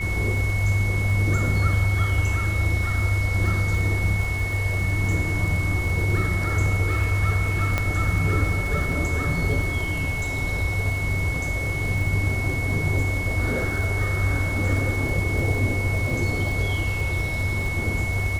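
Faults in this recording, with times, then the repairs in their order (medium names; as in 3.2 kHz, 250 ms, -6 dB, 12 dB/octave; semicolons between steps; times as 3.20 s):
crackle 59 per s -30 dBFS
whine 2.2 kHz -28 dBFS
7.78 s: pop -9 dBFS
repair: de-click; band-stop 2.2 kHz, Q 30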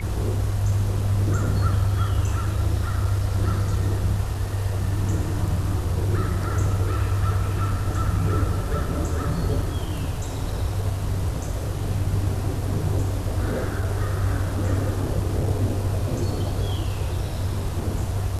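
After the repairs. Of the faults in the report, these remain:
nothing left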